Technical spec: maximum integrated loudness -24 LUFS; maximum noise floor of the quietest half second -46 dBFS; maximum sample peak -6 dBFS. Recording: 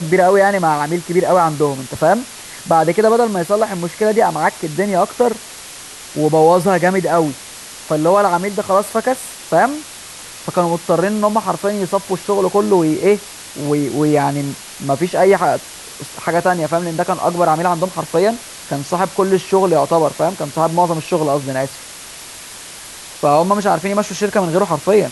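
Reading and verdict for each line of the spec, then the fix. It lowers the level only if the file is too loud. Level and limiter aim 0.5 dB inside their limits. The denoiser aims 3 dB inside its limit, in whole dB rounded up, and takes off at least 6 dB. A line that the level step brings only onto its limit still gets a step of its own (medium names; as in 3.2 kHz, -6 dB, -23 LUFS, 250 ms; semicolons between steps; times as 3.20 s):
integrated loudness -16.0 LUFS: fail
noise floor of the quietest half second -34 dBFS: fail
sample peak -2.0 dBFS: fail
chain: noise reduction 7 dB, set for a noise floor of -34 dBFS; trim -8.5 dB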